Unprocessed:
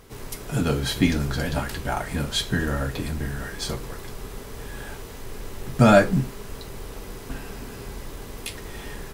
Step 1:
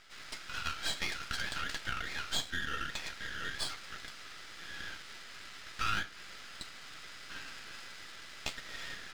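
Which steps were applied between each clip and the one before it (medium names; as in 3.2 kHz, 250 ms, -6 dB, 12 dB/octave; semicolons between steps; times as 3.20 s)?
Chebyshev band-pass 1.3–5.2 kHz, order 4; compression 3:1, threshold -34 dBFS, peak gain reduction 11.5 dB; half-wave rectifier; trim +4.5 dB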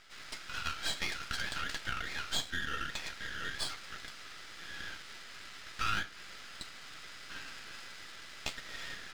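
no audible change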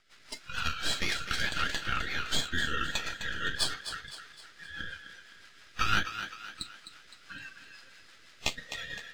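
spectral noise reduction 14 dB; rotary cabinet horn 6 Hz; thinning echo 257 ms, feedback 46%, high-pass 270 Hz, level -9.5 dB; trim +8.5 dB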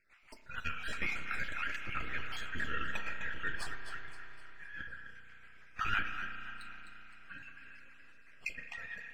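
random holes in the spectrogram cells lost 34%; resonant high shelf 3 kHz -7 dB, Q 3; on a send at -6 dB: reverberation RT60 3.8 s, pre-delay 33 ms; on the sum: trim -6.5 dB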